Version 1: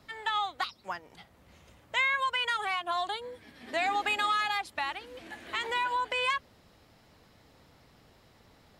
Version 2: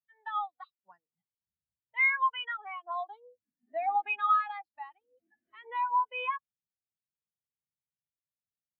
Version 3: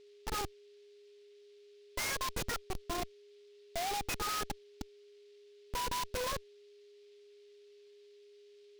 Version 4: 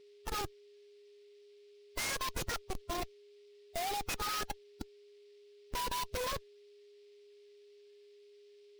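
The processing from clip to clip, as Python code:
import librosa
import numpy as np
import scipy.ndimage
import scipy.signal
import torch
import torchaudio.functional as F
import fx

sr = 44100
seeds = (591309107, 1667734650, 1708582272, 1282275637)

y1 = fx.peak_eq(x, sr, hz=160.0, db=5.5, octaves=1.3)
y1 = fx.spectral_expand(y1, sr, expansion=2.5)
y2 = fx.schmitt(y1, sr, flips_db=-33.0)
y2 = y2 + 10.0 ** (-56.0 / 20.0) * np.sin(2.0 * np.pi * 410.0 * np.arange(len(y2)) / sr)
y2 = fx.noise_mod_delay(y2, sr, seeds[0], noise_hz=3400.0, depth_ms=0.079)
y3 = fx.spec_quant(y2, sr, step_db=15)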